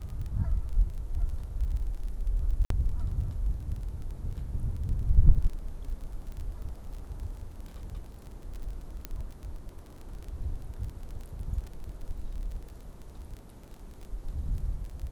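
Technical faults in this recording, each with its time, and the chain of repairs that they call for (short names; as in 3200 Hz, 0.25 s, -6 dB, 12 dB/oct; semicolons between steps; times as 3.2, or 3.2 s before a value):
crackle 20/s -36 dBFS
2.65–2.7 gap 53 ms
9.05 pop -20 dBFS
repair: de-click; interpolate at 2.65, 53 ms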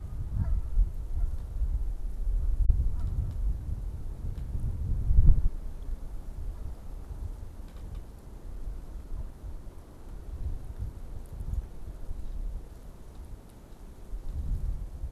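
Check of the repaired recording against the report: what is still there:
none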